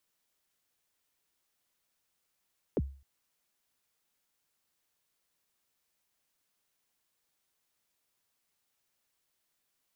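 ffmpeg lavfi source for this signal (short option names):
-f lavfi -i "aevalsrc='0.0708*pow(10,-3*t/0.4)*sin(2*PI*(550*0.039/log(68/550)*(exp(log(68/550)*min(t,0.039)/0.039)-1)+68*max(t-0.039,0)))':d=0.26:s=44100"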